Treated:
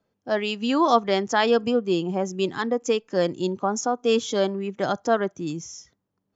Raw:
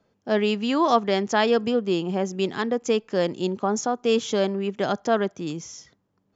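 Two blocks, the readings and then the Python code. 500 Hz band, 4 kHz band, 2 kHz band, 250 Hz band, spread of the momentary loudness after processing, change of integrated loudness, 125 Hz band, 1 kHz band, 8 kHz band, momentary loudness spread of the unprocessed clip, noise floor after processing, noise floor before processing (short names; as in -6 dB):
0.0 dB, +0.5 dB, +0.5 dB, -0.5 dB, 8 LU, 0.0 dB, -1.0 dB, +1.0 dB, n/a, 7 LU, -78 dBFS, -71 dBFS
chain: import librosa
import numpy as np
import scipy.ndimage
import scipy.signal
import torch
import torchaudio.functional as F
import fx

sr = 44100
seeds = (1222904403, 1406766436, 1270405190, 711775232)

y = fx.noise_reduce_blind(x, sr, reduce_db=8)
y = F.gain(torch.from_numpy(y), 1.0).numpy()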